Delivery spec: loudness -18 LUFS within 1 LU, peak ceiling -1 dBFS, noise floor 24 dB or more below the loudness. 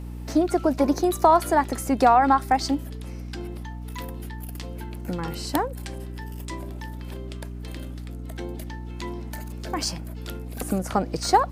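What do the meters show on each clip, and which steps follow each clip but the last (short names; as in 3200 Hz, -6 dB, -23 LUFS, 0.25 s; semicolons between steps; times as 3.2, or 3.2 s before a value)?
hum 60 Hz; harmonics up to 300 Hz; hum level -33 dBFS; loudness -24.5 LUFS; peak -4.0 dBFS; loudness target -18.0 LUFS
-> de-hum 60 Hz, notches 5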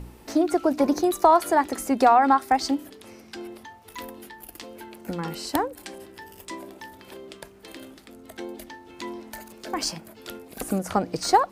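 hum none; loudness -23.0 LUFS; peak -3.5 dBFS; loudness target -18.0 LUFS
-> gain +5 dB; limiter -1 dBFS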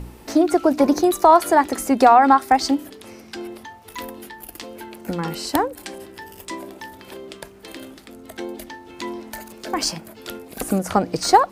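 loudness -18.5 LUFS; peak -1.0 dBFS; noise floor -45 dBFS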